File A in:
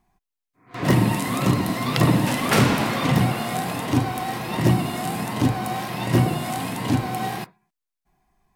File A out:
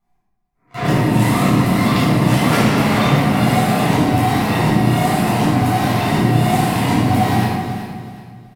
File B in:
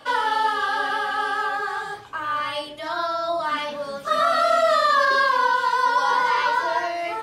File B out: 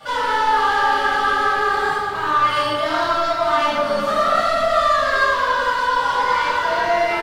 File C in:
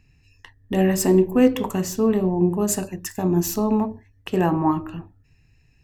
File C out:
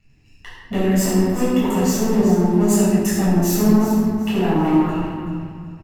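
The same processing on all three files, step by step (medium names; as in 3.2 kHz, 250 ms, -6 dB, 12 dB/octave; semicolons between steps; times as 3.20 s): compression 6:1, threshold -23 dBFS; waveshaping leveller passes 2; on a send: feedback delay 376 ms, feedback 30%, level -11 dB; on the sum: simulated room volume 970 m³, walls mixed, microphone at 7 m; trim -9.5 dB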